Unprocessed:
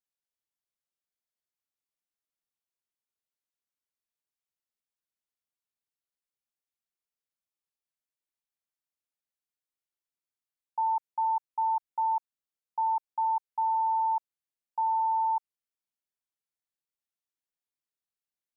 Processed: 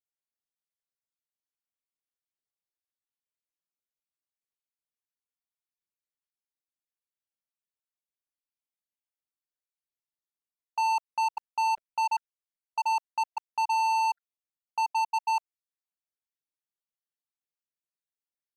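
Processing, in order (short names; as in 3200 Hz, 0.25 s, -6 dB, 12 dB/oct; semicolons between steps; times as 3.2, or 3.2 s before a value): random spectral dropouts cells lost 35%; sample leveller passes 3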